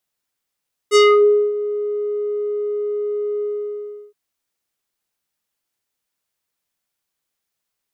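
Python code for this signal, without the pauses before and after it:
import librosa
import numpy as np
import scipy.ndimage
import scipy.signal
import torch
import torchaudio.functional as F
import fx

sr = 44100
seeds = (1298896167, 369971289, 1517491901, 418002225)

y = fx.sub_voice(sr, note=68, wave='square', cutoff_hz=470.0, q=1.5, env_oct=4.5, env_s=0.33, attack_ms=45.0, decay_s=0.57, sustain_db=-15.5, release_s=0.71, note_s=2.51, slope=12)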